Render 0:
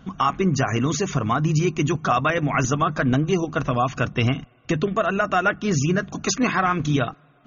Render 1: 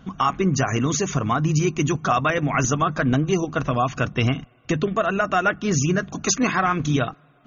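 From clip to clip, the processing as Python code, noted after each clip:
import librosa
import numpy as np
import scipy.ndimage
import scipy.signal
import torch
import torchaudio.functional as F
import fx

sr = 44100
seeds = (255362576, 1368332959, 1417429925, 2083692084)

y = fx.dynamic_eq(x, sr, hz=6300.0, q=4.3, threshold_db=-45.0, ratio=4.0, max_db=5)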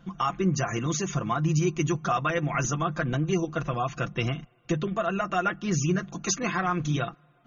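y = x + 0.65 * np.pad(x, (int(5.8 * sr / 1000.0), 0))[:len(x)]
y = y * librosa.db_to_amplitude(-7.5)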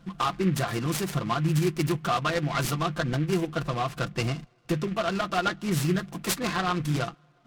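y = fx.noise_mod_delay(x, sr, seeds[0], noise_hz=1900.0, depth_ms=0.051)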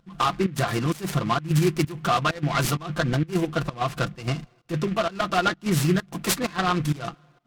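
y = fx.volume_shaper(x, sr, bpm=130, per_beat=1, depth_db=-18, release_ms=119.0, shape='slow start')
y = y * librosa.db_to_amplitude(4.0)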